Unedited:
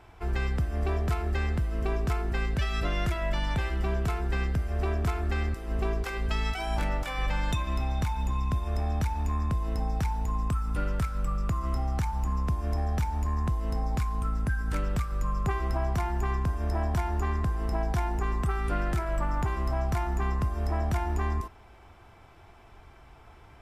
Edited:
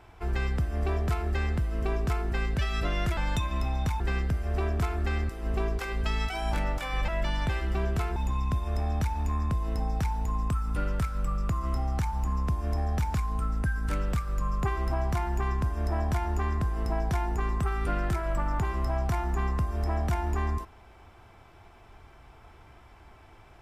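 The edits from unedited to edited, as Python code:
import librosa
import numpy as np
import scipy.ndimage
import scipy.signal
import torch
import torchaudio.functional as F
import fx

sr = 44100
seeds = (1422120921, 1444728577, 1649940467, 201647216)

y = fx.edit(x, sr, fx.swap(start_s=3.17, length_s=1.08, other_s=7.33, other_length_s=0.83),
    fx.cut(start_s=13.14, length_s=0.83), tone=tone)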